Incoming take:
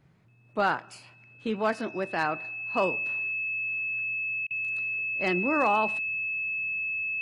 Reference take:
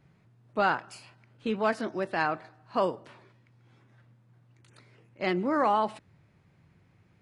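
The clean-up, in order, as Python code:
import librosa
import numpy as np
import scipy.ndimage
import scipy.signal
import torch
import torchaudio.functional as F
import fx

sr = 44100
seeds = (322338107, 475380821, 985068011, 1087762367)

y = fx.fix_declip(x, sr, threshold_db=-14.5)
y = fx.notch(y, sr, hz=2600.0, q=30.0)
y = fx.fix_interpolate(y, sr, at_s=(4.47,), length_ms=35.0)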